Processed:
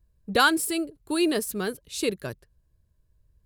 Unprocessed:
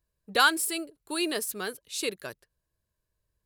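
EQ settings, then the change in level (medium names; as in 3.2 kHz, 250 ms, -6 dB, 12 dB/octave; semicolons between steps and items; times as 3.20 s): bass shelf 140 Hz +9.5 dB; bass shelf 470 Hz +9.5 dB; 0.0 dB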